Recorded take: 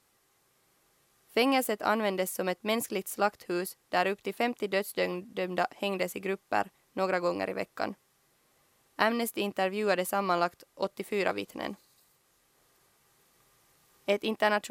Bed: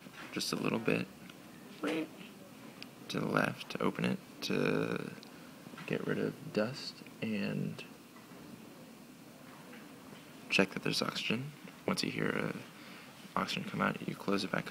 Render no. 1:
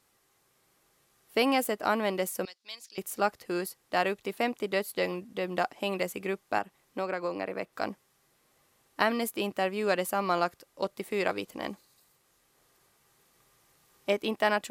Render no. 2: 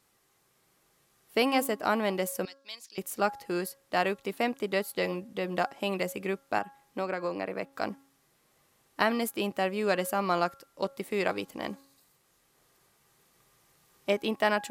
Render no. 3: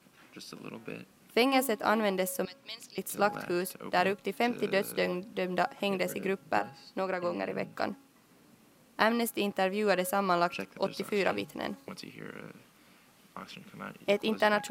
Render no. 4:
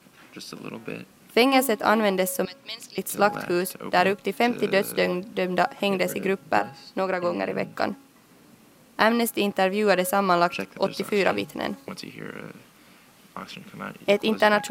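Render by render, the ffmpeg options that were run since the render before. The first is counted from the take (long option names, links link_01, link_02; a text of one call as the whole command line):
ffmpeg -i in.wav -filter_complex "[0:a]asettb=1/sr,asplit=3[link_01][link_02][link_03];[link_01]atrim=end=2.454[link_04];[link_02]atrim=start=2.45:end=2.98,asetpts=PTS-STARTPTS,afade=type=in:duration=0.004:curve=qsin,afade=type=out:start_time=0.526:duration=0.004:curve=qsin,bandpass=frequency=4600:width_type=q:width=2.7[link_05];[link_03]atrim=start=2.976[link_06];[link_04][link_05]acrossfade=duration=0.004:curve1=hsin:curve2=qsin[link_07];[link_07][link_06]acrossfade=duration=0.004:curve1=qsin:curve2=hsin,asettb=1/sr,asplit=3[link_08][link_09][link_10];[link_08]atrim=end=6.584[link_11];[link_09]atrim=start=6.58:end=7.73,asetpts=PTS-STARTPTS,afade=type=in:duration=0.004:curve=qsin,afade=type=out:start_time=1.146:duration=0.004:curve=qsin,acrossover=split=160|3800[link_12][link_13][link_14];[link_12]acompressor=threshold=-59dB:ratio=4[link_15];[link_13]acompressor=threshold=-28dB:ratio=4[link_16];[link_14]acompressor=threshold=-59dB:ratio=4[link_17];[link_15][link_16][link_17]amix=inputs=3:normalize=0[link_18];[link_10]atrim=start=7.726[link_19];[link_11][link_18]acrossfade=duration=0.004:curve1=hsin:curve2=qsin[link_20];[link_20][link_19]acrossfade=duration=0.004:curve1=qsin:curve2=hsin" out.wav
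ffmpeg -i in.wav -af "equalizer=frequency=170:width=1.6:gain=2.5,bandreject=frequency=274.4:width_type=h:width=4,bandreject=frequency=548.8:width_type=h:width=4,bandreject=frequency=823.2:width_type=h:width=4,bandreject=frequency=1097.6:width_type=h:width=4,bandreject=frequency=1372:width_type=h:width=4,bandreject=frequency=1646.4:width_type=h:width=4" out.wav
ffmpeg -i in.wav -i bed.wav -filter_complex "[1:a]volume=-10dB[link_01];[0:a][link_01]amix=inputs=2:normalize=0" out.wav
ffmpeg -i in.wav -af "volume=7dB,alimiter=limit=-3dB:level=0:latency=1" out.wav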